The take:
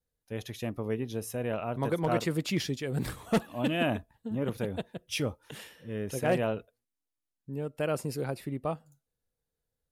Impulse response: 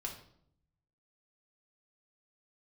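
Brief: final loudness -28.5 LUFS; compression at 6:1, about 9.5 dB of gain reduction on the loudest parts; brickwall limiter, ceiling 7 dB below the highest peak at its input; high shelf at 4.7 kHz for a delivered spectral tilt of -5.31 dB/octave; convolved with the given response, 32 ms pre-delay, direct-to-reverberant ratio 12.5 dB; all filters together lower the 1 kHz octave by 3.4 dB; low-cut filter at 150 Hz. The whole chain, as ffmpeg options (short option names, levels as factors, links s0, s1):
-filter_complex "[0:a]highpass=150,equalizer=f=1000:t=o:g=-5,highshelf=f=4700:g=-8,acompressor=threshold=0.0224:ratio=6,alimiter=level_in=2:limit=0.0631:level=0:latency=1,volume=0.501,asplit=2[s0][s1];[1:a]atrim=start_sample=2205,adelay=32[s2];[s1][s2]afir=irnorm=-1:irlink=0,volume=0.251[s3];[s0][s3]amix=inputs=2:normalize=0,volume=4.47"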